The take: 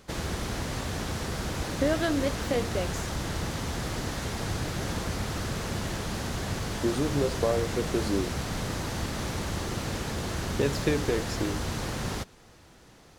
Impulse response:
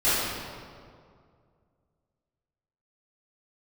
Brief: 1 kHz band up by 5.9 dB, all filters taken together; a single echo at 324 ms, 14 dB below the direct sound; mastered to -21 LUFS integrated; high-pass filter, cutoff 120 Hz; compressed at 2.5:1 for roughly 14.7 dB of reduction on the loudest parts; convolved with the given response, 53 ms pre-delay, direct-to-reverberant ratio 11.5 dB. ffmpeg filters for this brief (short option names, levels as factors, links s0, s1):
-filter_complex "[0:a]highpass=120,equalizer=f=1000:t=o:g=7.5,acompressor=threshold=0.00708:ratio=2.5,aecho=1:1:324:0.2,asplit=2[s0][s1];[1:a]atrim=start_sample=2205,adelay=53[s2];[s1][s2]afir=irnorm=-1:irlink=0,volume=0.0398[s3];[s0][s3]amix=inputs=2:normalize=0,volume=8.91"